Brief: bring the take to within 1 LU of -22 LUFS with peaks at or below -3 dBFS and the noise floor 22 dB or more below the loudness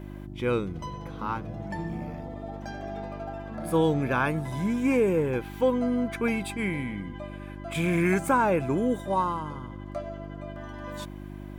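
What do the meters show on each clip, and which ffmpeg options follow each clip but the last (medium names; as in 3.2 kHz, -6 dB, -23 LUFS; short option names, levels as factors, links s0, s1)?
hum 50 Hz; highest harmonic 350 Hz; hum level -37 dBFS; loudness -28.5 LUFS; peak level -11.5 dBFS; loudness target -22.0 LUFS
-> -af "bandreject=f=50:t=h:w=4,bandreject=f=100:t=h:w=4,bandreject=f=150:t=h:w=4,bandreject=f=200:t=h:w=4,bandreject=f=250:t=h:w=4,bandreject=f=300:t=h:w=4,bandreject=f=350:t=h:w=4"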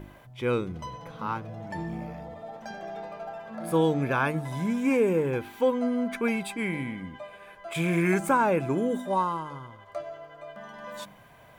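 hum not found; loudness -28.0 LUFS; peak level -12.0 dBFS; loudness target -22.0 LUFS
-> -af "volume=2"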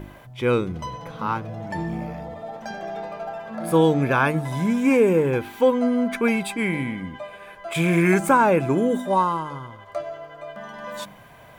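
loudness -22.0 LUFS; peak level -6.0 dBFS; noise floor -46 dBFS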